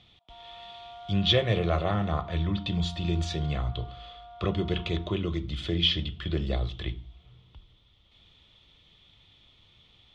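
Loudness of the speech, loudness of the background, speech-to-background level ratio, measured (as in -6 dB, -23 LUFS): -28.5 LUFS, -47.0 LUFS, 18.5 dB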